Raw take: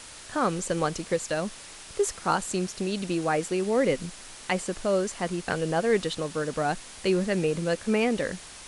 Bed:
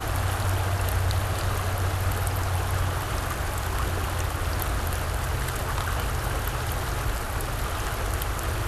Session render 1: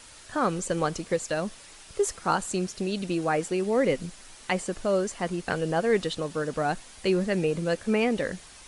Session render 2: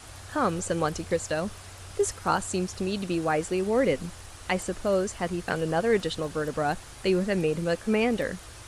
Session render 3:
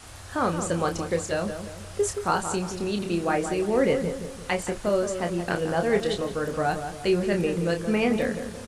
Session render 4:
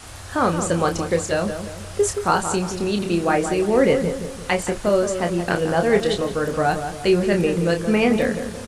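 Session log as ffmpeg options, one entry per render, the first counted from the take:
ffmpeg -i in.wav -af "afftdn=noise_reduction=6:noise_floor=-45" out.wav
ffmpeg -i in.wav -i bed.wav -filter_complex "[1:a]volume=-19.5dB[link_01];[0:a][link_01]amix=inputs=2:normalize=0" out.wav
ffmpeg -i in.wav -filter_complex "[0:a]asplit=2[link_01][link_02];[link_02]adelay=29,volume=-6.5dB[link_03];[link_01][link_03]amix=inputs=2:normalize=0,asplit=2[link_04][link_05];[link_05]adelay=173,lowpass=frequency=1500:poles=1,volume=-7.5dB,asplit=2[link_06][link_07];[link_07]adelay=173,lowpass=frequency=1500:poles=1,volume=0.46,asplit=2[link_08][link_09];[link_09]adelay=173,lowpass=frequency=1500:poles=1,volume=0.46,asplit=2[link_10][link_11];[link_11]adelay=173,lowpass=frequency=1500:poles=1,volume=0.46,asplit=2[link_12][link_13];[link_13]adelay=173,lowpass=frequency=1500:poles=1,volume=0.46[link_14];[link_06][link_08][link_10][link_12][link_14]amix=inputs=5:normalize=0[link_15];[link_04][link_15]amix=inputs=2:normalize=0" out.wav
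ffmpeg -i in.wav -af "volume=5.5dB" out.wav

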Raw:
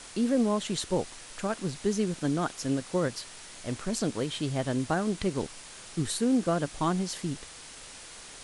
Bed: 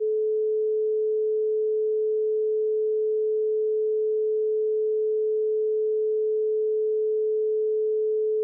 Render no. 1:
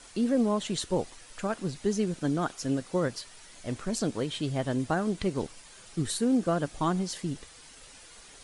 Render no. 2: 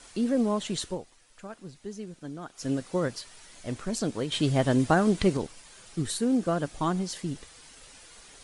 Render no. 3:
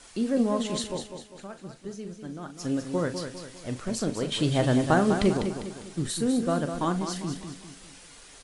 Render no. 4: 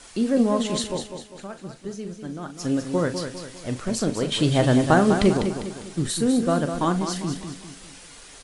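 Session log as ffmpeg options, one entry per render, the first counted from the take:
ffmpeg -i in.wav -af "afftdn=noise_reduction=8:noise_floor=-47" out.wav
ffmpeg -i in.wav -filter_complex "[0:a]asplit=5[link_01][link_02][link_03][link_04][link_05];[link_01]atrim=end=0.99,asetpts=PTS-STARTPTS,afade=type=out:start_time=0.86:duration=0.13:silence=0.281838[link_06];[link_02]atrim=start=0.99:end=2.53,asetpts=PTS-STARTPTS,volume=-11dB[link_07];[link_03]atrim=start=2.53:end=4.322,asetpts=PTS-STARTPTS,afade=type=in:duration=0.13:silence=0.281838[link_08];[link_04]atrim=start=4.318:end=5.372,asetpts=PTS-STARTPTS,volume=6dB[link_09];[link_05]atrim=start=5.368[link_10];[link_06][link_07][link_08]concat=n=3:v=0:a=1[link_11];[link_11][link_09]acrossfade=duration=0.004:curve1=hsin:curve2=hsin[link_12];[link_12][link_10]acrossfade=duration=0.004:curve1=hsin:curve2=hsin" out.wav
ffmpeg -i in.wav -filter_complex "[0:a]asplit=2[link_01][link_02];[link_02]adelay=40,volume=-11dB[link_03];[link_01][link_03]amix=inputs=2:normalize=0,aecho=1:1:200|400|600|800|1000:0.398|0.171|0.0736|0.0317|0.0136" out.wav
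ffmpeg -i in.wav -af "volume=4.5dB" out.wav

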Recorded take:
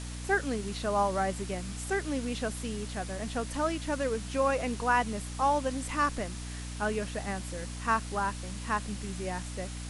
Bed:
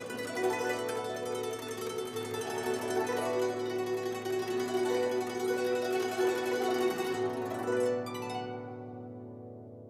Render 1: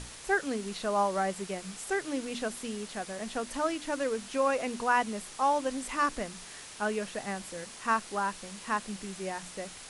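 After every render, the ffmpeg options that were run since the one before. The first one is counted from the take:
ffmpeg -i in.wav -af "bandreject=frequency=60:width_type=h:width=6,bandreject=frequency=120:width_type=h:width=6,bandreject=frequency=180:width_type=h:width=6,bandreject=frequency=240:width_type=h:width=6,bandreject=frequency=300:width_type=h:width=6" out.wav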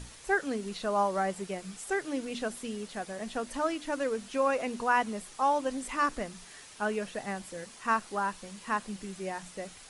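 ffmpeg -i in.wav -af "afftdn=noise_reduction=6:noise_floor=-47" out.wav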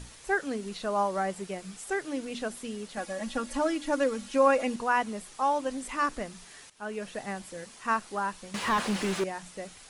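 ffmpeg -i in.wav -filter_complex "[0:a]asettb=1/sr,asplit=3[link_01][link_02][link_03];[link_01]atrim=end=2.974[link_04];[link_02]atrim=start=2.97:end=4.76,asetpts=PTS-STARTPTS,afade=type=in:duration=0.004:curve=qsin,afade=type=out:start_time=1.786:duration=0.004:curve=qsin,aecho=1:1:3.6:0.95,atrim=end_sample=78939[link_05];[link_03]atrim=start=4.756[link_06];[link_04][link_05]acrossfade=duration=0.004:curve1=hsin:curve2=qsin[link_07];[link_07][link_06]acrossfade=duration=0.004:curve1=qsin:curve2=hsin,asettb=1/sr,asplit=3[link_08][link_09][link_10];[link_08]atrim=end=8.544[link_11];[link_09]atrim=start=8.54:end=9.24,asetpts=PTS-STARTPTS,afade=type=in:duration=0.004:curve=qsin,afade=type=out:start_time=0.696:duration=0.004:curve=qsin,asplit=2[link_12][link_13];[link_13]highpass=frequency=720:poles=1,volume=32dB,asoftclip=type=tanh:threshold=-18dB[link_14];[link_12][link_14]amix=inputs=2:normalize=0,lowpass=frequency=1800:poles=1,volume=-6dB[link_15];[link_10]atrim=start=9.236[link_16];[link_11][link_15]acrossfade=duration=0.004:curve1=hsin:curve2=qsin[link_17];[link_17][link_16]acrossfade=duration=0.004:curve1=qsin:curve2=hsin,asplit=2[link_18][link_19];[link_18]atrim=end=6.7,asetpts=PTS-STARTPTS,afade=type=out:start_time=6.696:duration=0.004:curve=hsin:silence=0.16788[link_20];[link_19]atrim=start=6.7,asetpts=PTS-STARTPTS,afade=type=in:duration=0.42:silence=0.16788[link_21];[link_20][link_21]concat=n=2:v=0:a=1" out.wav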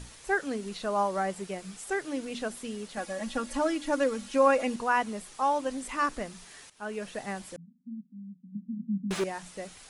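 ffmpeg -i in.wav -filter_complex "[0:a]asettb=1/sr,asplit=3[link_01][link_02][link_03];[link_01]atrim=end=7.564[link_04];[link_02]atrim=start=7.56:end=9.11,asetpts=PTS-STARTPTS,afade=type=in:duration=0.004:curve=qsin,afade=type=out:start_time=1.546:duration=0.004:curve=qsin,asuperpass=centerf=200:order=12:qfactor=1.8[link_05];[link_03]atrim=start=9.106[link_06];[link_04][link_05]acrossfade=duration=0.004:curve1=hsin:curve2=qsin[link_07];[link_07][link_06]acrossfade=duration=0.004:curve1=qsin:curve2=hsin" out.wav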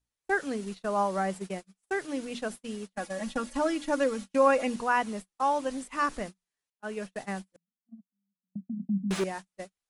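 ffmpeg -i in.wav -af "agate=range=-41dB:threshold=-37dB:ratio=16:detection=peak,adynamicequalizer=threshold=0.00316:dfrequency=190:dqfactor=7.5:tfrequency=190:tqfactor=7.5:attack=5:release=100:ratio=0.375:range=2:mode=boostabove:tftype=bell" out.wav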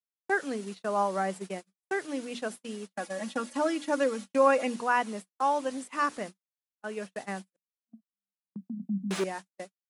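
ffmpeg -i in.wav -af "agate=range=-21dB:threshold=-46dB:ratio=16:detection=peak,highpass=190" out.wav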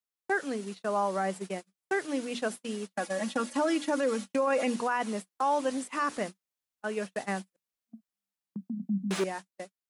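ffmpeg -i in.wav -af "dynaudnorm=framelen=430:gausssize=9:maxgain=3.5dB,alimiter=limit=-19.5dB:level=0:latency=1:release=26" out.wav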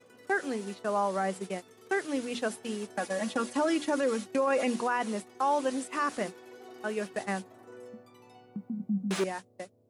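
ffmpeg -i in.wav -i bed.wav -filter_complex "[1:a]volume=-18dB[link_01];[0:a][link_01]amix=inputs=2:normalize=0" out.wav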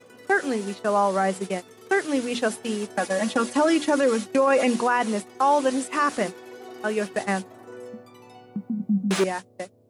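ffmpeg -i in.wav -af "volume=7.5dB" out.wav

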